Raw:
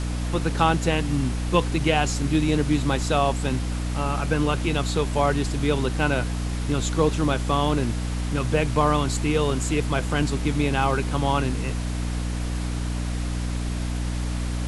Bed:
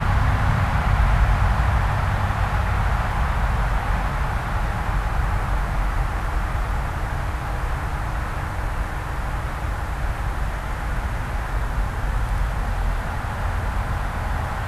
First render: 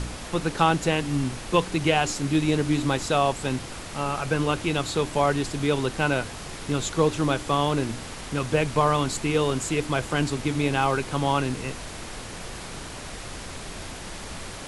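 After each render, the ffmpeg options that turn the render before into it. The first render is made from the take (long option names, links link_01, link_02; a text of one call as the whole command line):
ffmpeg -i in.wav -af "bandreject=frequency=60:width_type=h:width=4,bandreject=frequency=120:width_type=h:width=4,bandreject=frequency=180:width_type=h:width=4,bandreject=frequency=240:width_type=h:width=4,bandreject=frequency=300:width_type=h:width=4" out.wav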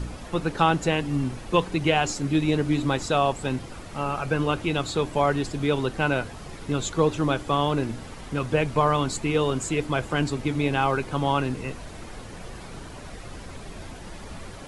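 ffmpeg -i in.wav -af "afftdn=noise_reduction=9:noise_floor=-38" out.wav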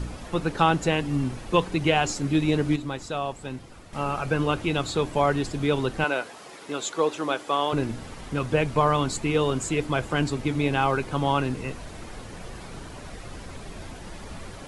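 ffmpeg -i in.wav -filter_complex "[0:a]asettb=1/sr,asplit=3[link_01][link_02][link_03];[link_01]atrim=end=6.044[link_04];[link_02]atrim=start=6.04:end=7.73,asetpts=PTS-STARTPTS,afade=type=in:duration=0.004:curve=qsin,afade=type=out:start_time=1.686:duration=0.004:curve=qsin,highpass=380[link_05];[link_03]atrim=start=7.726[link_06];[link_04][link_05]acrossfade=duration=0.004:curve1=hsin:curve2=qsin[link_07];[link_07][link_06]acrossfade=duration=0.004:curve1=qsin:curve2=hsin,asplit=3[link_08][link_09][link_10];[link_08]atrim=end=2.762[link_11];[link_09]atrim=start=2.758:end=3.932,asetpts=PTS-STARTPTS,volume=-7.5dB[link_12];[link_10]atrim=start=3.928[link_13];[link_11][link_12]acrossfade=duration=0.004:curve1=hsin:curve2=hsin[link_14];[link_14][link_13]acrossfade=duration=0.004:curve1=hsin:curve2=hsin" out.wav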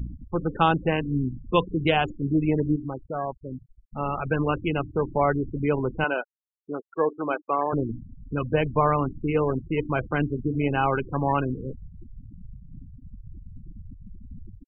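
ffmpeg -i in.wav -af "afwtdn=0.0224,afftfilt=real='re*gte(hypot(re,im),0.0447)':imag='im*gte(hypot(re,im),0.0447)':win_size=1024:overlap=0.75" out.wav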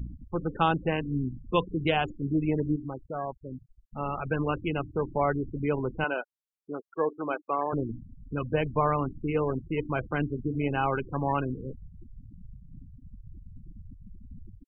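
ffmpeg -i in.wav -af "volume=-4dB" out.wav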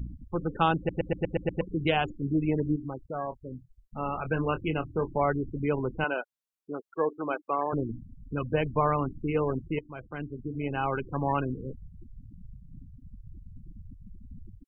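ffmpeg -i in.wav -filter_complex "[0:a]asettb=1/sr,asplit=3[link_01][link_02][link_03];[link_01]atrim=end=3.184[link_04];[link_02]atrim=start=3.18:end=5.09,asetpts=PTS-STARTPTS,afade=type=in:duration=0.004:curve=qsin,afade=type=out:start_time=1.906:duration=0.004:curve=qsin,asplit=2[link_05][link_06];[link_06]adelay=25,volume=-11dB[link_07];[link_05][link_07]amix=inputs=2:normalize=0,atrim=end_sample=84231[link_08];[link_03]atrim=start=5.086[link_09];[link_04][link_08]acrossfade=duration=0.004:curve1=hsin:curve2=qsin[link_10];[link_10][link_09]acrossfade=duration=0.004:curve1=qsin:curve2=hsin,asplit=9[link_11][link_12][link_13][link_14][link_15][link_16][link_17][link_18][link_19];[link_11]atrim=end=0.892[link_20];[link_12]atrim=start=0.768:end=0.892[link_21];[link_13]atrim=start=0.768:end=0.892[link_22];[link_14]atrim=start=0.768:end=0.892[link_23];[link_15]atrim=start=0.768:end=0.892[link_24];[link_16]atrim=start=0.768:end=0.892[link_25];[link_17]atrim=start=0.768:end=0.892[link_26];[link_18]atrim=start=1.608:end=9.79,asetpts=PTS-STARTPTS,afade=type=out:start_time=8.178:duration=0.004:curve=hsin:silence=0.149624[link_27];[link_19]atrim=start=9.79,asetpts=PTS-STARTPTS,afade=type=in:duration=1.44:silence=0.149624[link_28];[link_20][link_21]acrossfade=duration=0.004:curve1=hsin:curve2=hsin[link_29];[link_29][link_22]acrossfade=duration=0.004:curve1=hsin:curve2=hsin[link_30];[link_30][link_23]acrossfade=duration=0.004:curve1=hsin:curve2=hsin[link_31];[link_31][link_24]acrossfade=duration=0.004:curve1=hsin:curve2=hsin[link_32];[link_32][link_25]acrossfade=duration=0.004:curve1=hsin:curve2=hsin[link_33];[link_33][link_26]acrossfade=duration=0.004:curve1=hsin:curve2=hsin[link_34];[link_27][link_28]concat=n=2:v=0:a=1[link_35];[link_34][link_35]acrossfade=duration=0.004:curve1=hsin:curve2=hsin" out.wav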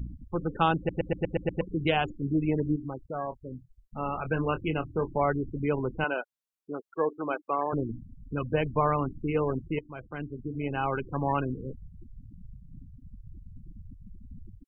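ffmpeg -i in.wav -af anull out.wav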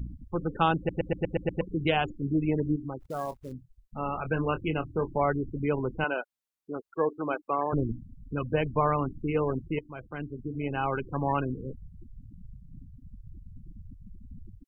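ffmpeg -i in.wav -filter_complex "[0:a]asplit=3[link_01][link_02][link_03];[link_01]afade=type=out:start_time=3:duration=0.02[link_04];[link_02]acrusher=bits=5:mode=log:mix=0:aa=0.000001,afade=type=in:start_time=3:duration=0.02,afade=type=out:start_time=3.51:duration=0.02[link_05];[link_03]afade=type=in:start_time=3.51:duration=0.02[link_06];[link_04][link_05][link_06]amix=inputs=3:normalize=0,asettb=1/sr,asplit=3[link_07][link_08][link_09];[link_07]atrim=end=6.764[link_10];[link_08]atrim=start=6.76:end=7.93,asetpts=PTS-STARTPTS,afade=type=in:duration=0.004:curve=qsin,afade=type=out:start_time=1.166:duration=0.004:curve=qsin,lowshelf=frequency=110:gain=10.5[link_11];[link_09]atrim=start=7.926[link_12];[link_10][link_11]acrossfade=duration=0.004:curve1=hsin:curve2=qsin[link_13];[link_13][link_12]acrossfade=duration=0.004:curve1=qsin:curve2=hsin" out.wav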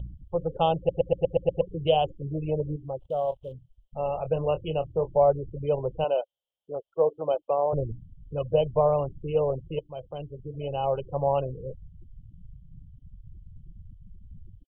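ffmpeg -i in.wav -filter_complex "[0:a]acrossover=split=2800[link_01][link_02];[link_02]acompressor=threshold=-52dB:ratio=4:attack=1:release=60[link_03];[link_01][link_03]amix=inputs=2:normalize=0,firequalizer=gain_entry='entry(160,0);entry(250,-15);entry(540,11);entry(1800,-30);entry(3100,12);entry(4400,-16)':delay=0.05:min_phase=1" out.wav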